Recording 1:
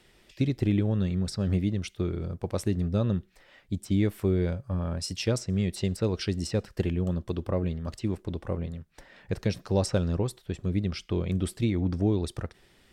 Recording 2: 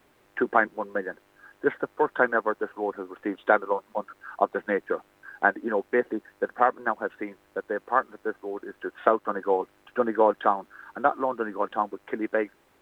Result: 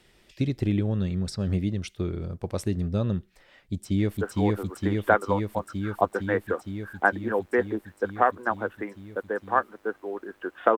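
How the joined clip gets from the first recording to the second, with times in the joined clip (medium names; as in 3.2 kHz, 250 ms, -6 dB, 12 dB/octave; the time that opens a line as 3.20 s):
recording 1
3.52–4.17 s: echo throw 460 ms, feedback 80%, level -0.5 dB
4.17 s: go over to recording 2 from 2.57 s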